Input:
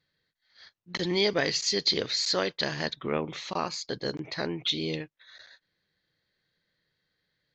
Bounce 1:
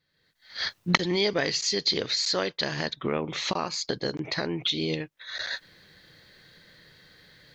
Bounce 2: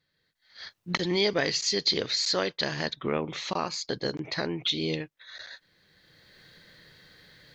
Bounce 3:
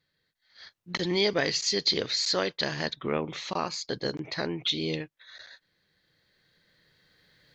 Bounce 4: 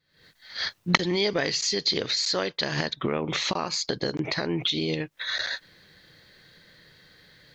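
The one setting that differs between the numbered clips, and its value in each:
camcorder AGC, rising by: 36, 15, 5.9, 91 dB per second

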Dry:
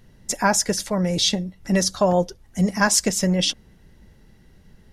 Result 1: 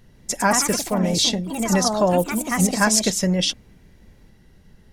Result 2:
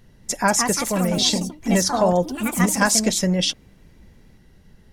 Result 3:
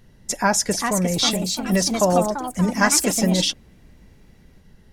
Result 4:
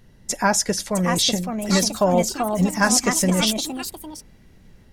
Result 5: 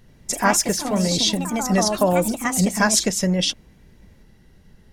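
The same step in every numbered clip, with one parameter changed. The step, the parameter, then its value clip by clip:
delay with pitch and tempo change per echo, delay time: 152, 235, 465, 706, 84 milliseconds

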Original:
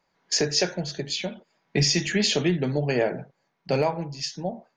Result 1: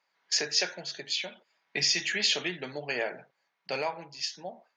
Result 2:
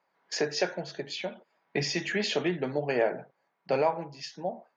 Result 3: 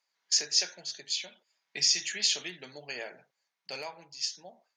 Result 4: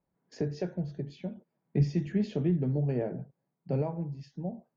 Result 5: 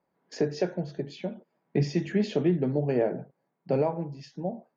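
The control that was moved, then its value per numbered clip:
resonant band-pass, frequency: 2,700, 970, 7,600, 100, 290 Hertz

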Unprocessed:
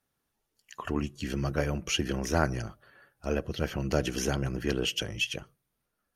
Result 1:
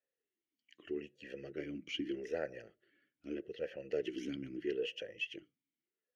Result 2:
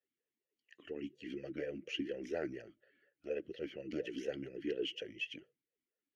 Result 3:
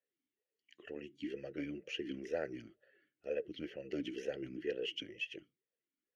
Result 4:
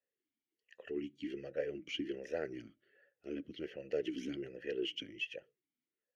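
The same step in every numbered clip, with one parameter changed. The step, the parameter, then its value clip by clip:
formant filter swept between two vowels, speed: 0.8, 4.2, 2.1, 1.3 Hertz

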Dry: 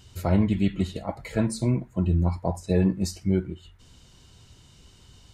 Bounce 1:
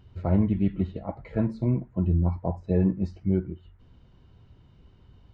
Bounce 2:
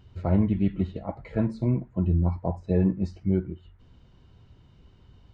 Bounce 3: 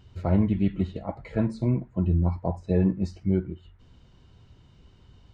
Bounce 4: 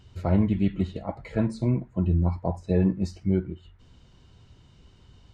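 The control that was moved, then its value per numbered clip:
head-to-tape spacing loss, at 10 kHz: 45, 37, 28, 20 decibels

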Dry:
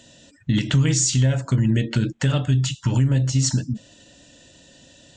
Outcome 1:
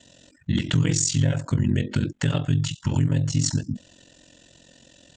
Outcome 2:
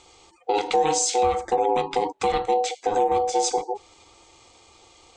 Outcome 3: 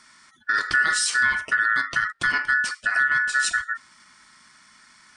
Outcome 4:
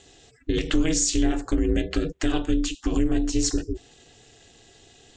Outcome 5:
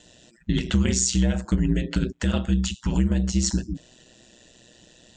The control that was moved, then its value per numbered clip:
ring modulation, frequency: 22, 620, 1,600, 160, 61 Hertz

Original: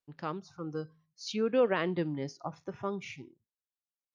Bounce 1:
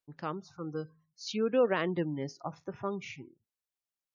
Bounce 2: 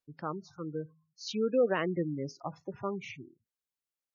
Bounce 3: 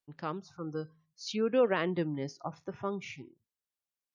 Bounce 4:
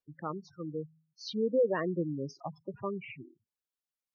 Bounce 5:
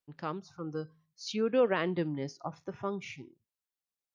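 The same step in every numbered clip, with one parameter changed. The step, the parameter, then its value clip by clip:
gate on every frequency bin, under each frame's peak: −35, −20, −45, −10, −60 decibels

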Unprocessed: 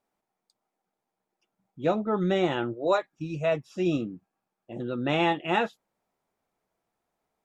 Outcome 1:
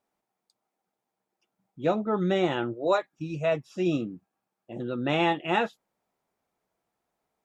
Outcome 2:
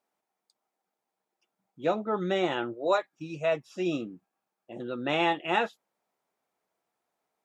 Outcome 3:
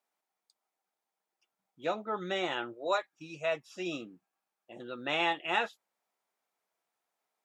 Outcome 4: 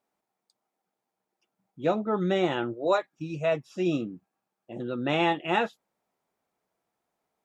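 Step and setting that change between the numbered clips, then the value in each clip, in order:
high-pass filter, corner frequency: 40, 350, 1,200, 110 Hertz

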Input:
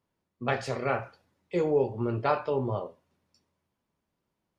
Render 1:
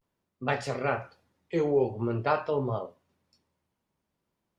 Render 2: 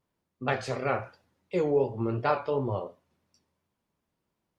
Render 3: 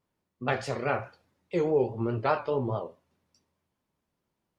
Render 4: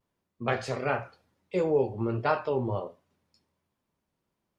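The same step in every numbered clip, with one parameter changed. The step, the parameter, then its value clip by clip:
pitch vibrato, speed: 0.47, 2.8, 4.8, 1.4 Hertz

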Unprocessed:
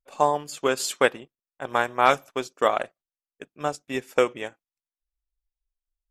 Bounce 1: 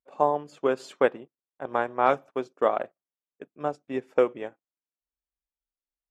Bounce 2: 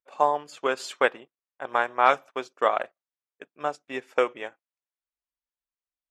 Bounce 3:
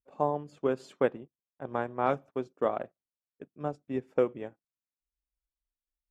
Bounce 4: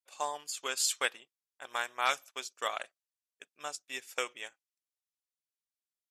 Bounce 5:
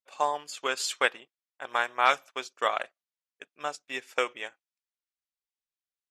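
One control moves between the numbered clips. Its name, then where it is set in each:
resonant band-pass, frequency: 380, 1,100, 150, 7,400, 2,900 Hertz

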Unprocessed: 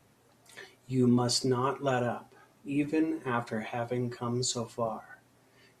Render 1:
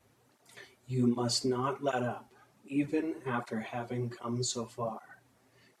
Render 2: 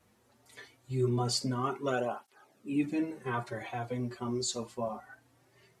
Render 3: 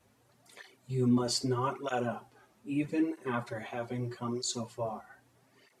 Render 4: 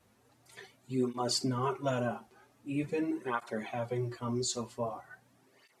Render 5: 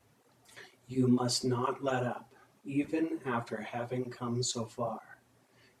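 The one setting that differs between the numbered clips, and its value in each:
through-zero flanger with one copy inverted, nulls at: 1.3, 0.22, 0.79, 0.44, 2.1 Hertz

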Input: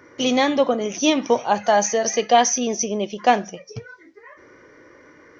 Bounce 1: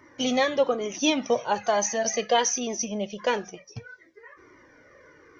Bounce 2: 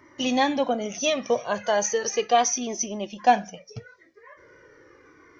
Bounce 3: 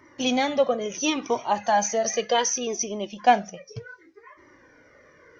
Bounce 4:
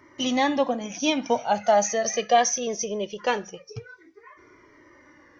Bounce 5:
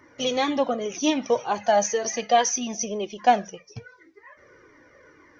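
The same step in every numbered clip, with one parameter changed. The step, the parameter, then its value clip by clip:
flanger whose copies keep moving one way, speed: 1.1, 0.36, 0.68, 0.21, 1.9 Hertz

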